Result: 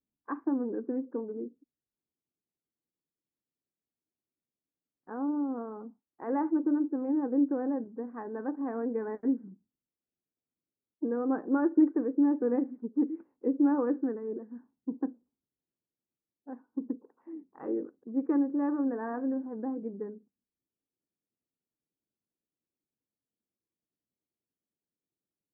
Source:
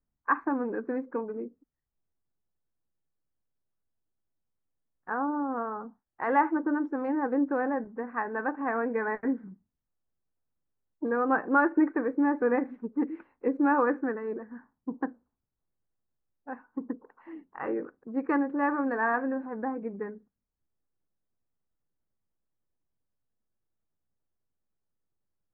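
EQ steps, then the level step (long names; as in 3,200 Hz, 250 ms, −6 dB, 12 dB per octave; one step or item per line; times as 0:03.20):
resonant band-pass 300 Hz, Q 1.4
high-frequency loss of the air 170 metres
+1.5 dB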